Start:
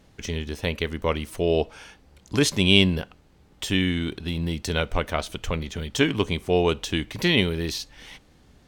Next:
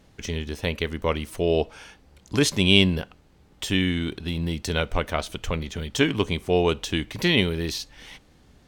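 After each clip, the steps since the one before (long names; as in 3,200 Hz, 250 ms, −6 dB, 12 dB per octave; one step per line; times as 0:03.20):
no processing that can be heard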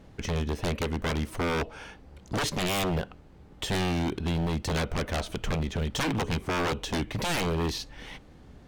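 high-shelf EQ 2,300 Hz −10.5 dB
in parallel at −2 dB: downward compressor, threshold −29 dBFS, peak gain reduction 14.5 dB
on the sum: wave folding −22.5 dBFS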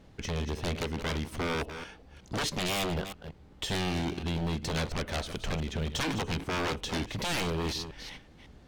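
delay that plays each chunk backwards 184 ms, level −10 dB
parametric band 4,100 Hz +3.5 dB 1.7 octaves
level −4 dB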